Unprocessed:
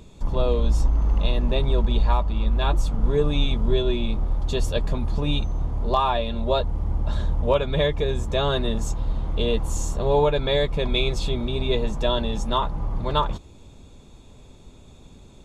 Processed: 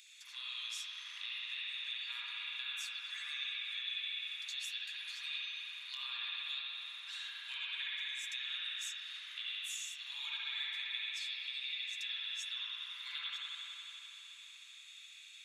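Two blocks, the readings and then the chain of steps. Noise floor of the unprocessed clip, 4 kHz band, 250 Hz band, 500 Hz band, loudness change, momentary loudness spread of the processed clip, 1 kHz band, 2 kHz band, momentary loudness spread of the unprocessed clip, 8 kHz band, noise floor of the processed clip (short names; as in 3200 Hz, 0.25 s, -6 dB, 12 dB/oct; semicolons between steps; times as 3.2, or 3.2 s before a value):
-47 dBFS, -5.5 dB, under -40 dB, under -40 dB, -15.5 dB, 8 LU, -30.5 dB, -5.0 dB, 6 LU, -8.5 dB, -55 dBFS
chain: steep high-pass 1900 Hz 36 dB/oct; compressor, threshold -45 dBFS, peak gain reduction 21.5 dB; spring tank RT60 3.7 s, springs 60 ms, chirp 55 ms, DRR -7.5 dB; gain +1 dB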